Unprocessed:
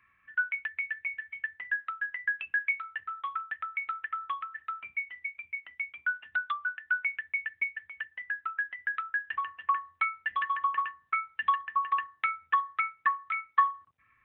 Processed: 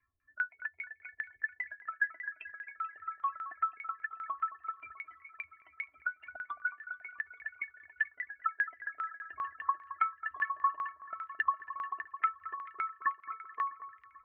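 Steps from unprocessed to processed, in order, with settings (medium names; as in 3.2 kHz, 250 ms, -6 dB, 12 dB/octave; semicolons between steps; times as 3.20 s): expander on every frequency bin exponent 1.5; comb 2.9 ms, depth 88%; compression 4:1, threshold -33 dBFS, peak gain reduction 15 dB; LFO low-pass saw down 5 Hz 450–1900 Hz; echo whose repeats swap between lows and highs 218 ms, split 1.6 kHz, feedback 73%, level -13 dB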